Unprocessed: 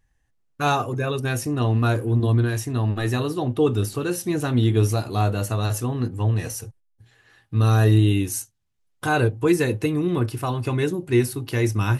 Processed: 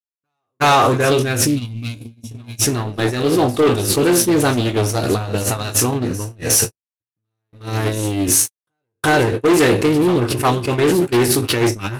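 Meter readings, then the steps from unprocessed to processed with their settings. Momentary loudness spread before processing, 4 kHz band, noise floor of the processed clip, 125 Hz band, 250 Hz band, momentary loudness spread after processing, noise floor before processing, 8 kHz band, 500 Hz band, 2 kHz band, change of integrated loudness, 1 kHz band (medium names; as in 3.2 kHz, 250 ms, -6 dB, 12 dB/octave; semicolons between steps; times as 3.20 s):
7 LU, +11.0 dB, under -85 dBFS, -1.5 dB, +5.5 dB, 10 LU, -68 dBFS, +15.0 dB, +7.5 dB, +7.5 dB, +6.0 dB, +8.0 dB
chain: spectral sustain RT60 0.30 s; rotary cabinet horn 1 Hz, later 6.7 Hz, at 9.57 s; waveshaping leveller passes 3; time-frequency box 1.47–2.66 s, 310–2100 Hz -21 dB; in parallel at +2 dB: compressor with a negative ratio -22 dBFS, ratio -1; on the sum: bass shelf 85 Hz -10.5 dB; on a send: reverse echo 361 ms -12.5 dB; on the sum: wavefolder -6 dBFS; dynamic bell 130 Hz, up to -4 dB, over -24 dBFS, Q 0.87; gate -15 dBFS, range -52 dB; loudspeaker Doppler distortion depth 0.17 ms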